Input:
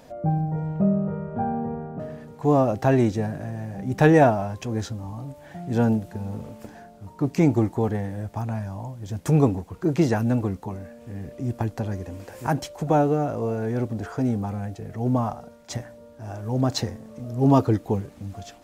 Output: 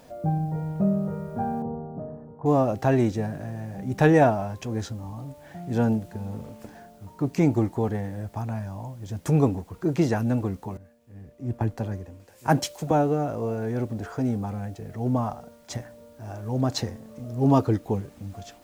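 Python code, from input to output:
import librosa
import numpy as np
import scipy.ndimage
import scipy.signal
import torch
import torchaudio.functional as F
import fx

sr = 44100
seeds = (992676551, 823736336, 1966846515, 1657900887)

y = fx.dmg_noise_colour(x, sr, seeds[0], colour='white', level_db=-64.0)
y = fx.lowpass(y, sr, hz=1100.0, slope=24, at=(1.62, 2.46))
y = fx.band_widen(y, sr, depth_pct=100, at=(10.77, 12.91))
y = y * 10.0 ** (-2.0 / 20.0)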